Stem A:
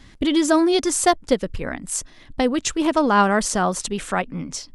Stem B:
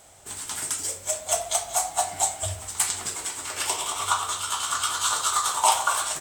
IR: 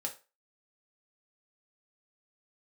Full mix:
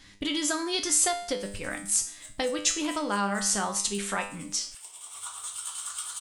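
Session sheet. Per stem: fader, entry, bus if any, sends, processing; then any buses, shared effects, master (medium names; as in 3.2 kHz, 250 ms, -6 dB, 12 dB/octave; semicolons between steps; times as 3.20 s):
+2.5 dB, 0.00 s, send -8.5 dB, feedback comb 100 Hz, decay 0.45 s, harmonics all, mix 80%; compression 4:1, threshold -28 dBFS, peak gain reduction 8.5 dB
-14.5 dB, 1.15 s, no send, peaking EQ 9.1 kHz +12.5 dB 0.26 oct; compression 1.5:1, threshold -26 dBFS, peak gain reduction 5.5 dB; saturation -9 dBFS, distortion -27 dB; auto duck -12 dB, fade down 1.90 s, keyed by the first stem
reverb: on, RT60 0.30 s, pre-delay 3 ms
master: tilt shelf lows -6 dB, about 1.3 kHz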